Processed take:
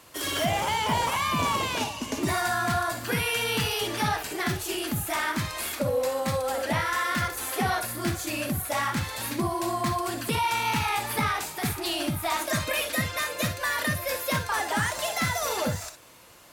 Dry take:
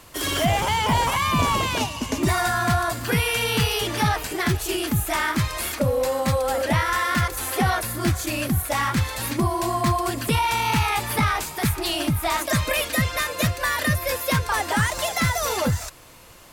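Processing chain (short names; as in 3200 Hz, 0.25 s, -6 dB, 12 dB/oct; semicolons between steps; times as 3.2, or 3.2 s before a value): HPF 150 Hz 6 dB/oct; reverb, pre-delay 3 ms, DRR 7.5 dB; gain -4.5 dB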